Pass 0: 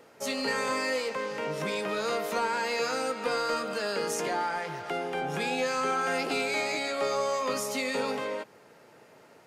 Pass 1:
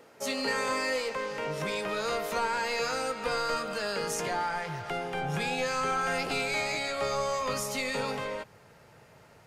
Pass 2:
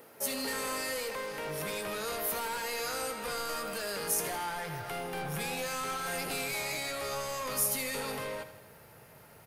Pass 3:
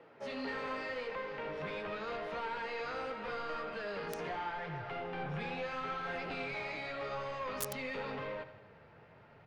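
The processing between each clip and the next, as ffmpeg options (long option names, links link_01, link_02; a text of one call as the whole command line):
ffmpeg -i in.wav -af "asubboost=boost=10.5:cutoff=90" out.wav
ffmpeg -i in.wav -filter_complex "[0:a]acrossover=split=5500[link_01][link_02];[link_01]asoftclip=type=tanh:threshold=-34dB[link_03];[link_02]aexciter=amount=6.2:drive=4.3:freq=9600[link_04];[link_03][link_04]amix=inputs=2:normalize=0,aecho=1:1:80|160|240|320|400|480:0.237|0.138|0.0798|0.0463|0.0268|0.0156" out.wav
ffmpeg -i in.wav -filter_complex "[0:a]flanger=delay=5.6:depth=7.6:regen=-42:speed=0.84:shape=triangular,acrossover=split=150|3600[link_01][link_02][link_03];[link_03]acrusher=bits=3:mix=0:aa=0.000001[link_04];[link_01][link_02][link_04]amix=inputs=3:normalize=0,volume=1dB" out.wav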